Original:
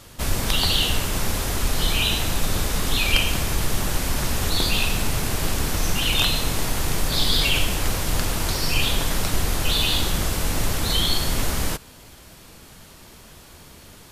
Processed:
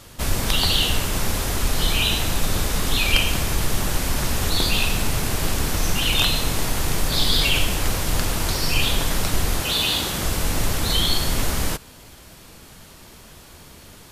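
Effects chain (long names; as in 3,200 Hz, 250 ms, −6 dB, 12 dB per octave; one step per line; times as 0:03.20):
0:09.60–0:10.23: high-pass filter 150 Hz 6 dB per octave
level +1 dB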